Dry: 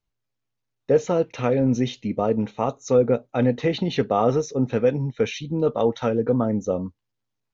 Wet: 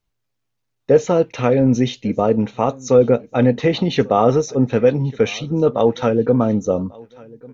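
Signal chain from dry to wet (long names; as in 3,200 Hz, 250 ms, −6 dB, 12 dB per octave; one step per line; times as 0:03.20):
repeating echo 1,143 ms, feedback 33%, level −24 dB
level +5.5 dB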